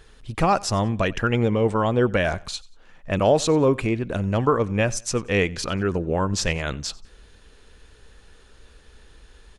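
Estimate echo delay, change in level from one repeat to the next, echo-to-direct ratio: 92 ms, -9.5 dB, -22.5 dB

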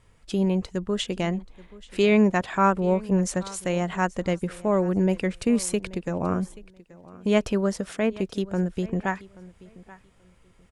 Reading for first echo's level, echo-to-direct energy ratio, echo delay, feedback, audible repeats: -20.5 dB, -20.5 dB, 0.831 s, 21%, 2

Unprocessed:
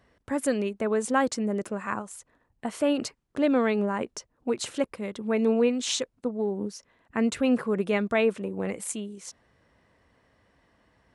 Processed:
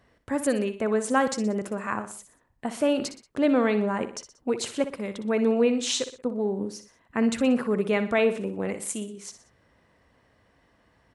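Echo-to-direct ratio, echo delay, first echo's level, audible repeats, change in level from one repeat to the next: -10.5 dB, 61 ms, -11.5 dB, 3, -6.5 dB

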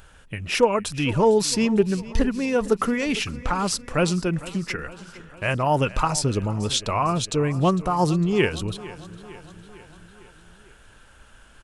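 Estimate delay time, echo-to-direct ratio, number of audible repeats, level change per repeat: 0.454 s, -16.0 dB, 4, -4.5 dB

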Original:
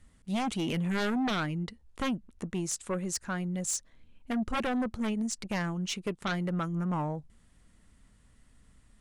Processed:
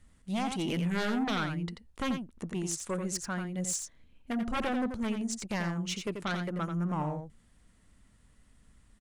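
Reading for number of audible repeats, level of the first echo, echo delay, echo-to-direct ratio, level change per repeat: 1, -7.0 dB, 87 ms, -7.0 dB, no steady repeat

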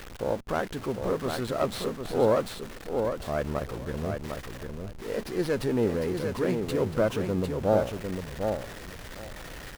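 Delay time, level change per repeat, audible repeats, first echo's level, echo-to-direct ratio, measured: 0.752 s, -16.0 dB, 2, -5.5 dB, -5.5 dB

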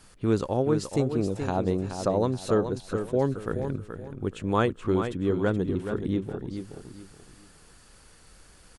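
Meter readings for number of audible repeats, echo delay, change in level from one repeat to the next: 3, 0.426 s, -10.5 dB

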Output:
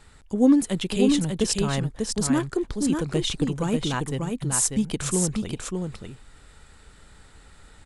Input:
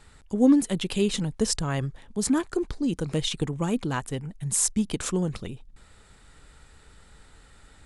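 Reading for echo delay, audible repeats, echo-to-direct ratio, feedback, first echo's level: 0.593 s, 1, -4.5 dB, no steady repeat, -4.5 dB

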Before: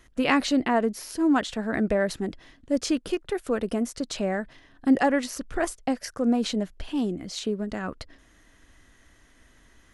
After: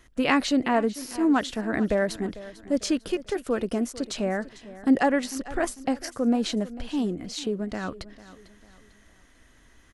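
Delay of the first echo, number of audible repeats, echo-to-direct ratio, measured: 0.448 s, 3, -16.5 dB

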